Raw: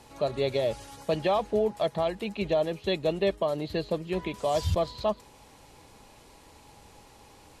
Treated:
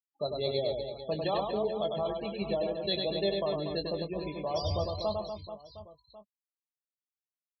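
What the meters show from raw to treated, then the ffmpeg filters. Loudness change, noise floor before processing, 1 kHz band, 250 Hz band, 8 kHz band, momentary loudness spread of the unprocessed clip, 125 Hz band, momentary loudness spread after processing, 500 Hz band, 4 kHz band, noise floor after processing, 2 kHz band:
−3.5 dB, −55 dBFS, −4.5 dB, −4.0 dB, below −15 dB, 5 LU, −4.0 dB, 11 LU, −4.0 dB, +1.5 dB, below −85 dBFS, −7.0 dB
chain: -filter_complex "[0:a]afftfilt=real='re*gte(hypot(re,im),0.0316)':imag='im*gte(hypot(re,im),0.0316)':win_size=1024:overlap=0.75,afftdn=noise_reduction=22:noise_floor=-43,aexciter=amount=7.3:drive=3.7:freq=3800,asplit=2[link_01][link_02];[link_02]adelay=20,volume=-9.5dB[link_03];[link_01][link_03]amix=inputs=2:normalize=0,asplit=2[link_04][link_05];[link_05]aecho=0:1:100|240|436|710.4|1095:0.631|0.398|0.251|0.158|0.1[link_06];[link_04][link_06]amix=inputs=2:normalize=0,volume=-6.5dB"

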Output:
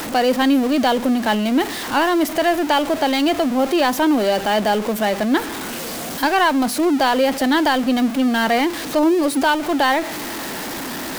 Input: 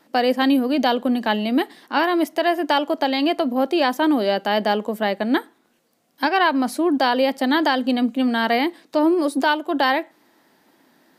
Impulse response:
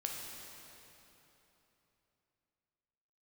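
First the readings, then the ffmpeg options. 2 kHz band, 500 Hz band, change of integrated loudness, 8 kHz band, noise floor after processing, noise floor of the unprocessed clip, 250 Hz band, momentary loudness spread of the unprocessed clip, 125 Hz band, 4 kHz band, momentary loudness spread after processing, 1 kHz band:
+2.0 dB, +2.0 dB, +2.0 dB, +13.5 dB, −28 dBFS, −63 dBFS, +2.5 dB, 4 LU, can't be measured, +2.5 dB, 10 LU, +2.0 dB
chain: -af "aeval=exprs='val(0)+0.5*0.0794*sgn(val(0))':channel_layout=same"

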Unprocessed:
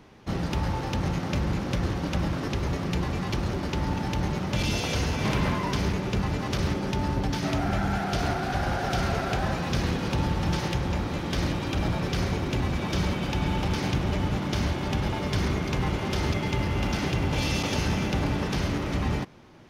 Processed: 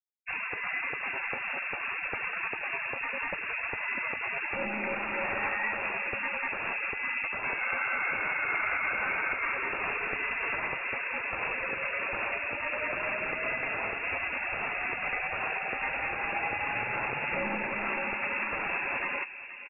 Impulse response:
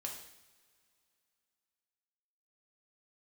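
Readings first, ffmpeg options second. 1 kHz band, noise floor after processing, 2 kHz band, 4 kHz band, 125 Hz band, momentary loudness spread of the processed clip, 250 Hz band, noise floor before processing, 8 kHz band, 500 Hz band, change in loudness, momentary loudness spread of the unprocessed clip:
−2.5 dB, −37 dBFS, +6.5 dB, below −10 dB, −25.0 dB, 3 LU, −17.0 dB, −32 dBFS, below −40 dB, −6.5 dB, −3.0 dB, 2 LU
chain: -filter_complex "[0:a]highpass=300,afftfilt=real='re*gte(hypot(re,im),0.0158)':imag='im*gte(hypot(re,im),0.0158)':win_size=1024:overlap=0.75,acontrast=48,alimiter=limit=-17dB:level=0:latency=1:release=153,crystalizer=i=7:c=0,aeval=exprs='0.631*(cos(1*acos(clip(val(0)/0.631,-1,1)))-cos(1*PI/2))+0.00355*(cos(7*acos(clip(val(0)/0.631,-1,1)))-cos(7*PI/2))':channel_layout=same,asplit=2[link_01][link_02];[link_02]adelay=478,lowpass=frequency=810:poles=1,volume=-9dB,asplit=2[link_03][link_04];[link_04]adelay=478,lowpass=frequency=810:poles=1,volume=0.46,asplit=2[link_05][link_06];[link_06]adelay=478,lowpass=frequency=810:poles=1,volume=0.46,asplit=2[link_07][link_08];[link_08]adelay=478,lowpass=frequency=810:poles=1,volume=0.46,asplit=2[link_09][link_10];[link_10]adelay=478,lowpass=frequency=810:poles=1,volume=0.46[link_11];[link_01][link_03][link_05][link_07][link_09][link_11]amix=inputs=6:normalize=0,lowpass=frequency=2500:width_type=q:width=0.5098,lowpass=frequency=2500:width_type=q:width=0.6013,lowpass=frequency=2500:width_type=q:width=0.9,lowpass=frequency=2500:width_type=q:width=2.563,afreqshift=-2900,volume=-7dB"

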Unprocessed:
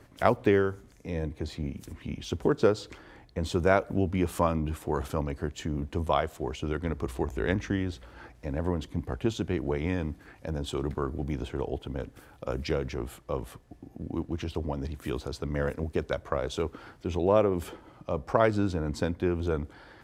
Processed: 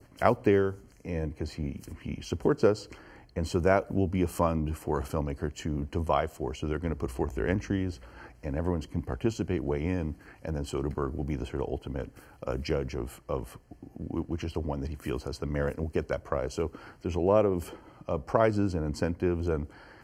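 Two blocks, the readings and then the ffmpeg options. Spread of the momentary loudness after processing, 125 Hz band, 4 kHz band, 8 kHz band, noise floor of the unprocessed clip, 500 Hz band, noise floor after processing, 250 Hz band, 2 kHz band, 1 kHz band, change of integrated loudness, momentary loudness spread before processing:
13 LU, 0.0 dB, −3.5 dB, 0.0 dB, −55 dBFS, −0.5 dB, −55 dBFS, 0.0 dB, −2.0 dB, −1.0 dB, −0.5 dB, 14 LU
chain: -af "adynamicequalizer=threshold=0.00631:dfrequency=1700:dqfactor=0.87:tfrequency=1700:tqfactor=0.87:attack=5:release=100:ratio=0.375:range=3.5:mode=cutabove:tftype=bell,asuperstop=centerf=3600:order=20:qfactor=4.8"

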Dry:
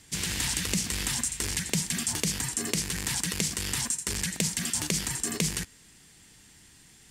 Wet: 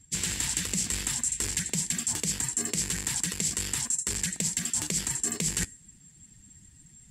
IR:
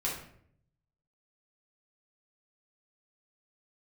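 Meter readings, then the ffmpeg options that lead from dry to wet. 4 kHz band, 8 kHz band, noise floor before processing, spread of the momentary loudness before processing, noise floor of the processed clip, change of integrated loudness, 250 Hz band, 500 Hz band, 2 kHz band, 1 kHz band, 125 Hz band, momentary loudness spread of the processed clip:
−3.0 dB, +2.0 dB, −56 dBFS, 2 LU, −56 dBFS, +0.5 dB, −3.0 dB, −4.0 dB, −3.0 dB, −3.5 dB, −3.0 dB, 2 LU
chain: -af "afftdn=noise_reduction=19:noise_floor=-49,equalizer=frequency=7600:width_type=o:width=0.2:gain=10,areverse,acompressor=threshold=-34dB:ratio=8,areverse,volume=8dB"

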